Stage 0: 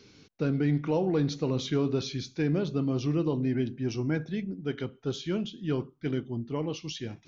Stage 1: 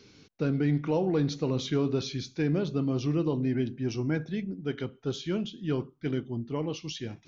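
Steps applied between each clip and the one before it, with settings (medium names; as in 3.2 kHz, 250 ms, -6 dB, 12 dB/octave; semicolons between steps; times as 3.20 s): no audible change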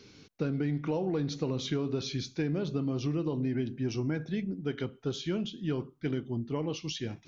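compression, threshold -28 dBFS, peak gain reduction 6.5 dB; trim +1 dB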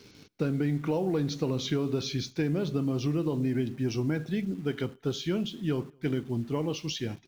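echo from a far wall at 38 m, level -29 dB; in parallel at -9 dB: word length cut 8-bit, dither none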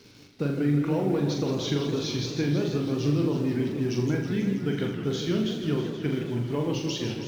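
on a send: flutter echo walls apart 7.1 m, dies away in 0.53 s; on the sum: modulated delay 162 ms, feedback 76%, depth 199 cents, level -9 dB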